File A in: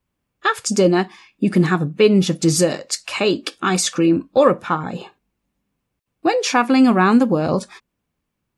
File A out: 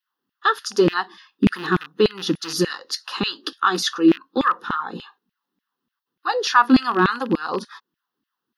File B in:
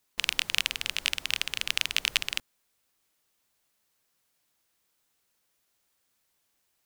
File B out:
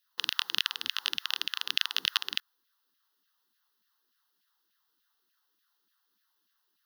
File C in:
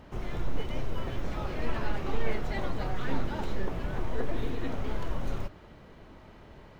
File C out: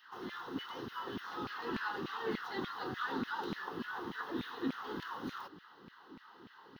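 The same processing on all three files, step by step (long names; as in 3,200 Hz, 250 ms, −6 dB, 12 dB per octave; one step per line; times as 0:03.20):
loose part that buzzes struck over −20 dBFS, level −19 dBFS
phaser with its sweep stopped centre 2,300 Hz, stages 6
auto-filter high-pass saw down 3.4 Hz 210–2,500 Hz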